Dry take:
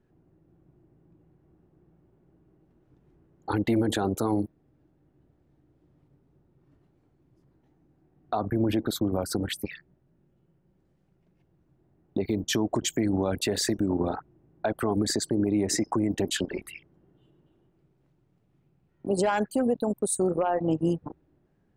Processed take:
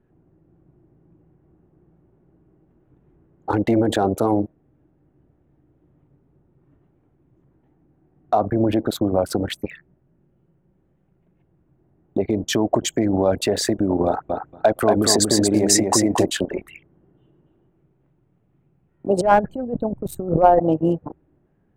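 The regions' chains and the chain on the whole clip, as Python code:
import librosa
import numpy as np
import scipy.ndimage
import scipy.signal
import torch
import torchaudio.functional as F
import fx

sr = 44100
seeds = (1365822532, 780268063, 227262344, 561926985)

y = fx.chain(x, sr, fx.high_shelf(hz=3000.0, db=9.5),
    fx.echo_feedback(ms=233, feedback_pct=17, wet_db=-4.0), at=(14.06, 16.26))
y = fx.chain(y, sr, fx.riaa(side='playback'),
    fx.over_compress(threshold_db=-25.0, ratio=-0.5),
    fx.resample_linear(factor=2), at=(19.21, 20.6))
y = fx.wiener(y, sr, points=9)
y = fx.dynamic_eq(y, sr, hz=620.0, q=1.5, threshold_db=-43.0, ratio=4.0, max_db=8)
y = y * librosa.db_to_amplitude(4.5)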